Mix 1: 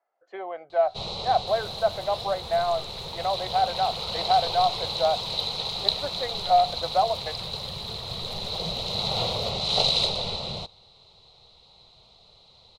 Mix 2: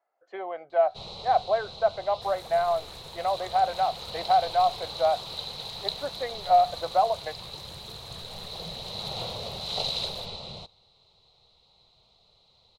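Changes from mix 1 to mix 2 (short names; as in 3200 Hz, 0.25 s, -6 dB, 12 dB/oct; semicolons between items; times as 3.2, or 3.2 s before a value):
first sound -7.5 dB; second sound: entry +0.75 s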